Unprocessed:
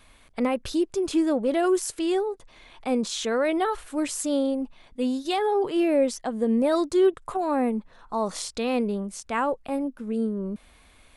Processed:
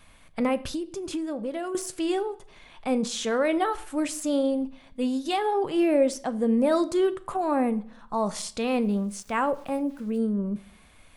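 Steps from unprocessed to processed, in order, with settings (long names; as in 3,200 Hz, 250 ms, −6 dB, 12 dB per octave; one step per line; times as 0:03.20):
de-essing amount 55%
convolution reverb RT60 0.60 s, pre-delay 9 ms, DRR 12.5 dB
0:00.64–0:01.75: downward compressor 6 to 1, threshold −28 dBFS, peak gain reduction 10 dB
thirty-one-band graphic EQ 160 Hz +8 dB, 400 Hz −4 dB, 4,000 Hz −3 dB
0:08.67–0:10.18: centre clipping without the shift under −50 dBFS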